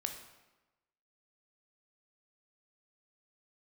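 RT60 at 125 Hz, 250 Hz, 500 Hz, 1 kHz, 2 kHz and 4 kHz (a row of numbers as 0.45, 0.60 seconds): 1.1, 1.1, 1.1, 1.1, 1.0, 0.85 seconds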